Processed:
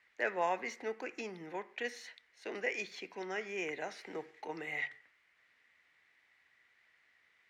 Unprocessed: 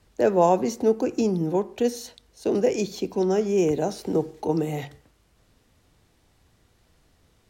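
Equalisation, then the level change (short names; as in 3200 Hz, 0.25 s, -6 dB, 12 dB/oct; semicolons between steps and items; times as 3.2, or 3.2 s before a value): band-pass 2000 Hz, Q 5.6; +9.0 dB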